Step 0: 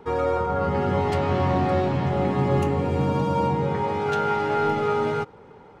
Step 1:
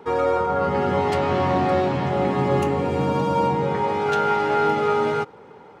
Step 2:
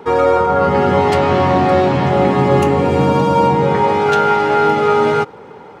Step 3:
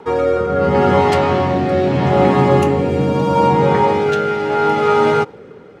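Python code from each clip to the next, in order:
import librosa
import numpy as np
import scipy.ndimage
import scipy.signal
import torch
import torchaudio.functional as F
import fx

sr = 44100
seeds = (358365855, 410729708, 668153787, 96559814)

y1 = fx.highpass(x, sr, hz=210.0, slope=6)
y1 = F.gain(torch.from_numpy(y1), 3.5).numpy()
y2 = fx.rider(y1, sr, range_db=10, speed_s=0.5)
y2 = F.gain(torch.from_numpy(y2), 8.0).numpy()
y3 = fx.rotary(y2, sr, hz=0.75)
y3 = F.gain(torch.from_numpy(y3), 1.0).numpy()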